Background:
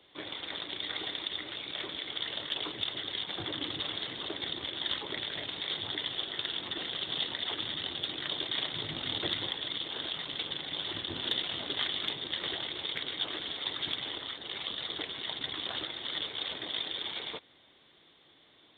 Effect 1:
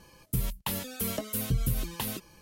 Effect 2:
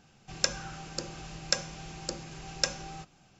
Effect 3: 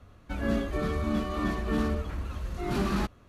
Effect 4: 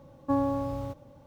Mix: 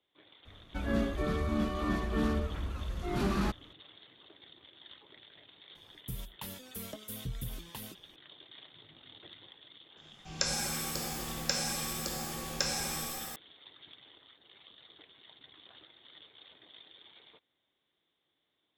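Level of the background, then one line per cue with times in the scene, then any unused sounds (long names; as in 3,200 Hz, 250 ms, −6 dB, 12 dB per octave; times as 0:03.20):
background −19.5 dB
0:00.45: mix in 3 −2.5 dB
0:05.75: mix in 1 −11 dB
0:09.97: mix in 2 −5 dB + reverb with rising layers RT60 2 s, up +7 semitones, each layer −2 dB, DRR −2 dB
not used: 4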